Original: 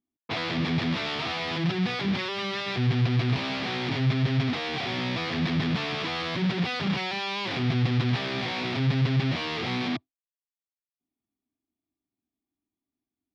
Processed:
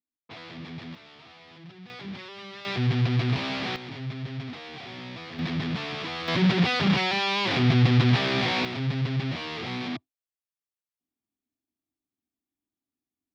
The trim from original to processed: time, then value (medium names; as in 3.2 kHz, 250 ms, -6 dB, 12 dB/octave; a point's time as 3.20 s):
-13 dB
from 0.95 s -20 dB
from 1.90 s -11 dB
from 2.65 s 0 dB
from 3.76 s -10 dB
from 5.39 s -3 dB
from 6.28 s +5 dB
from 8.65 s -3.5 dB